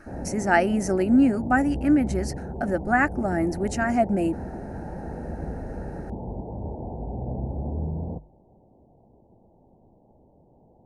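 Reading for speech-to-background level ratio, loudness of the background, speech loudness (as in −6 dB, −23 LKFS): 10.5 dB, −34.0 LKFS, −23.5 LKFS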